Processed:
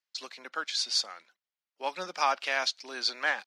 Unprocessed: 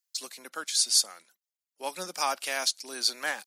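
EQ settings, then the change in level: distance through air 220 m; bass shelf 500 Hz -10 dB; +6.0 dB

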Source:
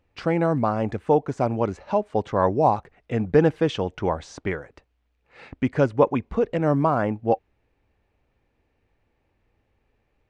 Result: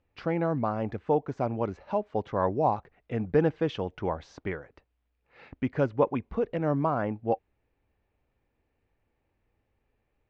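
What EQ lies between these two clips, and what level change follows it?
Bessel low-pass 4.1 kHz, order 8; -6.0 dB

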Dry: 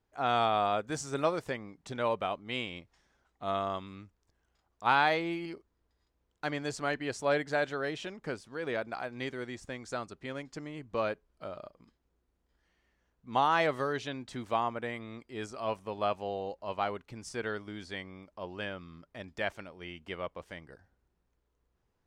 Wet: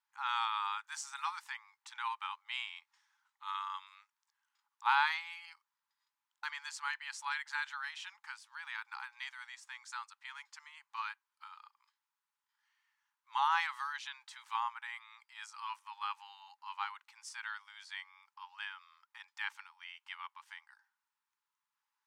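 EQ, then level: brick-wall FIR high-pass 810 Hz; -2.5 dB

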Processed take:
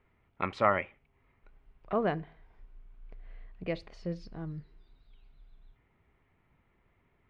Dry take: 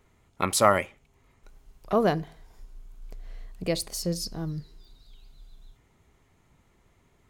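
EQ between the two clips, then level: four-pole ladder low-pass 3 kHz, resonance 30%; 0.0 dB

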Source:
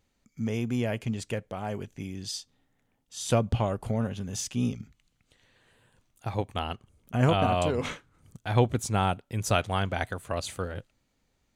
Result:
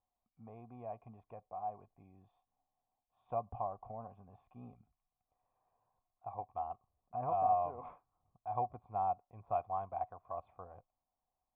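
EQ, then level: cascade formant filter a; bass shelf 97 Hz +10 dB; 0.0 dB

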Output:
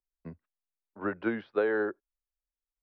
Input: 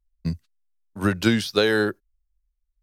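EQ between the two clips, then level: brick-wall FIR low-pass 6.3 kHz; distance through air 490 m; three-band isolator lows -20 dB, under 300 Hz, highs -19 dB, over 2.1 kHz; -3.5 dB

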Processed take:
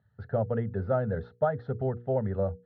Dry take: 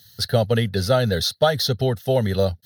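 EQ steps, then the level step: low-pass 1.4 kHz 24 dB/octave; hum notches 60/120/180/240/300/360/420/480 Hz; -8.0 dB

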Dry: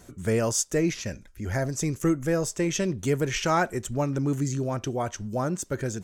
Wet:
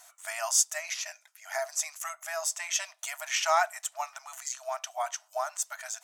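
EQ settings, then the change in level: brick-wall FIR high-pass 610 Hz; treble shelf 6.1 kHz +5 dB; band-stop 1.6 kHz, Q 20; 0.0 dB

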